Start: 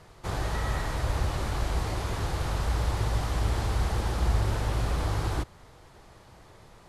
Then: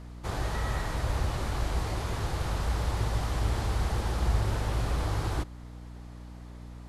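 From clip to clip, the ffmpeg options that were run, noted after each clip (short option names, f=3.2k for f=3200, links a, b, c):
-af "aeval=exprs='val(0)+0.00891*(sin(2*PI*60*n/s)+sin(2*PI*2*60*n/s)/2+sin(2*PI*3*60*n/s)/3+sin(2*PI*4*60*n/s)/4+sin(2*PI*5*60*n/s)/5)':c=same,volume=-1.5dB"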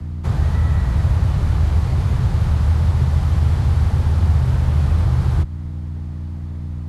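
-filter_complex "[0:a]afreqshift=22,bass=f=250:g=13,treble=f=4k:g=-4,acrossover=split=220|520[a][b][c];[a]acompressor=threshold=-18dB:ratio=4[d];[b]acompressor=threshold=-42dB:ratio=4[e];[c]acompressor=threshold=-39dB:ratio=4[f];[d][e][f]amix=inputs=3:normalize=0,volume=5dB"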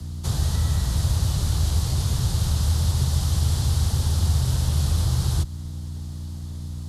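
-af "aexciter=amount=8.2:drive=3.8:freq=3.3k,volume=-5.5dB"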